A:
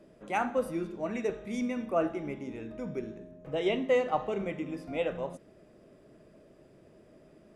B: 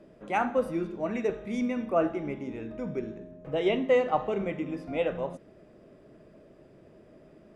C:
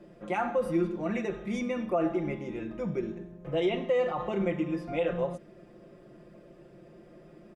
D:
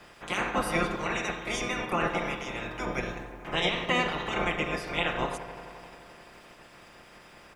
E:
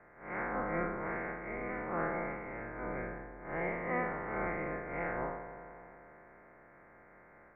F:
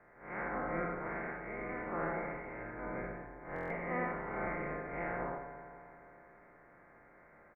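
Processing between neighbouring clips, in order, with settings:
high shelf 6000 Hz -10.5 dB; gain +3 dB
limiter -22.5 dBFS, peak gain reduction 10 dB; comb 5.7 ms, depth 76%
spectral limiter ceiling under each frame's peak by 29 dB; dark delay 87 ms, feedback 82%, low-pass 1800 Hz, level -13 dB
time blur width 0.103 s; rippled Chebyshev low-pass 2200 Hz, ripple 3 dB; gain -3 dB
echo 80 ms -5 dB; stuck buffer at 3.54, samples 1024, times 6; gain -3 dB

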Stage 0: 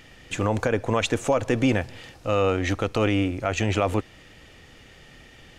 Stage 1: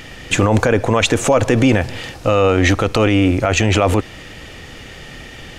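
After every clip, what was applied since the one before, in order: maximiser +16 dB; gain -2 dB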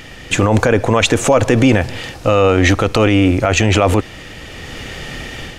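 AGC gain up to 7 dB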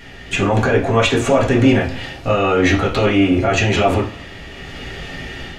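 reverb, pre-delay 3 ms, DRR -8 dB; gain -10 dB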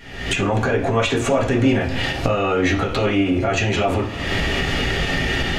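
recorder AGC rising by 53 dB/s; ending taper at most 110 dB/s; gain -4 dB

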